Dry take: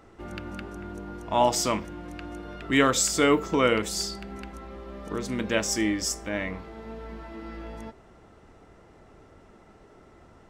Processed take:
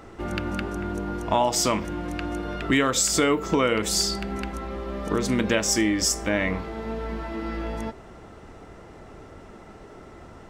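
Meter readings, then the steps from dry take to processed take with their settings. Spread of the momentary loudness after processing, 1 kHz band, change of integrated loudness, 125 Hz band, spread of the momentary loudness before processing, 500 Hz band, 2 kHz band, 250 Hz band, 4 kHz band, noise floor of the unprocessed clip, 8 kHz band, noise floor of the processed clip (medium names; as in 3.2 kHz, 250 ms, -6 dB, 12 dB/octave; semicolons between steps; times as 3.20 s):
12 LU, +1.0 dB, +0.5 dB, +5.0 dB, 19 LU, +1.5 dB, +2.0 dB, +3.0 dB, +3.5 dB, -54 dBFS, +4.0 dB, -46 dBFS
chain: compression 6:1, threshold -27 dBFS, peak gain reduction 11 dB; trim +8.5 dB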